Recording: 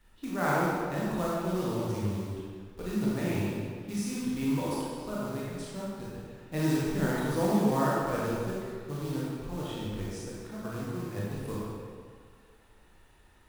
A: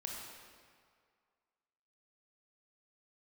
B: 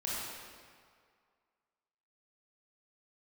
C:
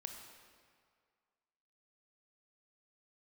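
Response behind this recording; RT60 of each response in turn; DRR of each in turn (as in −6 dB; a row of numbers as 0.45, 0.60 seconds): B; 2.0, 2.0, 2.0 seconds; −1.5, −7.0, 3.5 decibels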